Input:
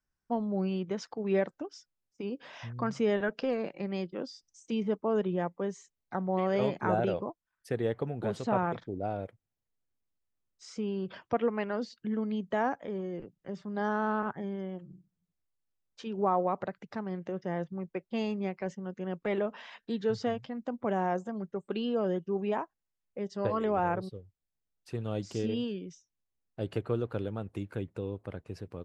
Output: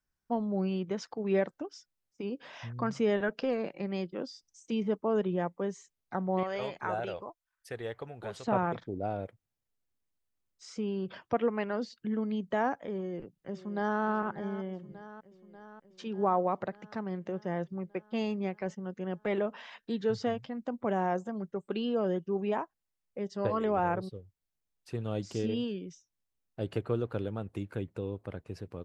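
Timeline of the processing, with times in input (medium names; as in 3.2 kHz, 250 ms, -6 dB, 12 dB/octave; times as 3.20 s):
6.43–8.48 s: peaking EQ 210 Hz -13.5 dB 2.5 oct
12.95–14.02 s: echo throw 590 ms, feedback 70%, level -14 dB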